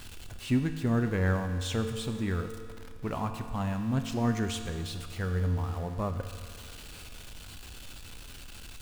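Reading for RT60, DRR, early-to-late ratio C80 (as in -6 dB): 2.1 s, 6.5 dB, 9.0 dB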